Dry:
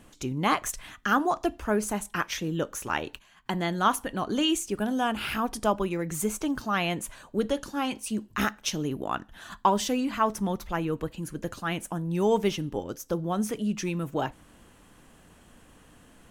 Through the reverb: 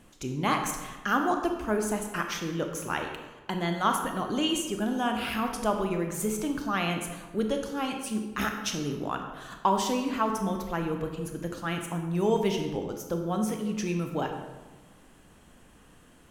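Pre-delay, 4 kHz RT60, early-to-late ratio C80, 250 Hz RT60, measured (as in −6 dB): 23 ms, 0.80 s, 7.0 dB, 1.6 s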